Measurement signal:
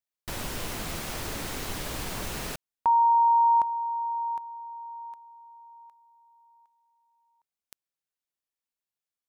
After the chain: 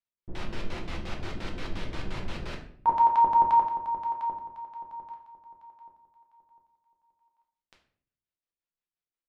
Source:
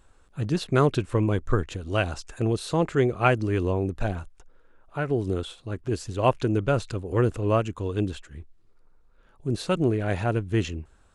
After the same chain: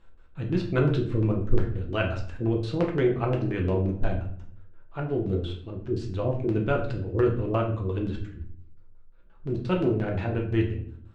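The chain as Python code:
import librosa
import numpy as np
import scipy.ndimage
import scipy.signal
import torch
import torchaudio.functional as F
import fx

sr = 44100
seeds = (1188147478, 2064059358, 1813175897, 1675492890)

y = fx.filter_lfo_lowpass(x, sr, shape='square', hz=5.7, low_hz=340.0, high_hz=3500.0, q=1.0)
y = fx.room_shoebox(y, sr, seeds[0], volume_m3=77.0, walls='mixed', distance_m=0.73)
y = y * 10.0 ** (-4.5 / 20.0)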